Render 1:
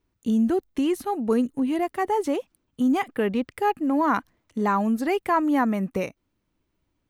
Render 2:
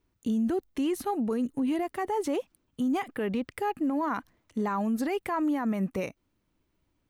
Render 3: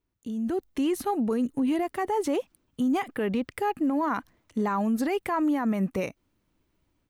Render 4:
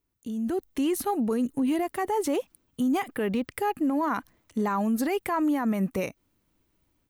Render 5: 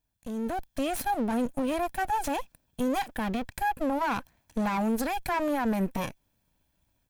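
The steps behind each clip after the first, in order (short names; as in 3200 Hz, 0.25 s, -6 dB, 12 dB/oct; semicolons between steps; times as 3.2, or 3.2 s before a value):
limiter -22 dBFS, peak gain reduction 11 dB
AGC gain up to 10 dB; gain -7.5 dB
high shelf 9200 Hz +10 dB
minimum comb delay 1.2 ms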